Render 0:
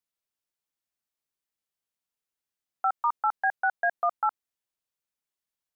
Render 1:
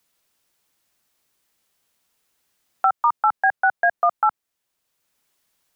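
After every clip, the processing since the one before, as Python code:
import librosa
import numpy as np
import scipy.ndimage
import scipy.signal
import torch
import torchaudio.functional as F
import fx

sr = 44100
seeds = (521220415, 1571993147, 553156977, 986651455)

y = fx.band_squash(x, sr, depth_pct=40)
y = y * librosa.db_to_amplitude(7.5)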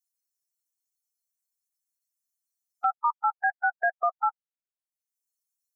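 y = fx.bin_expand(x, sr, power=3.0)
y = y * librosa.db_to_amplitude(-5.0)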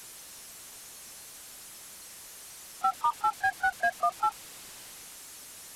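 y = fx.delta_mod(x, sr, bps=64000, step_db=-37.5)
y = y * librosa.db_to_amplitude(-1.5)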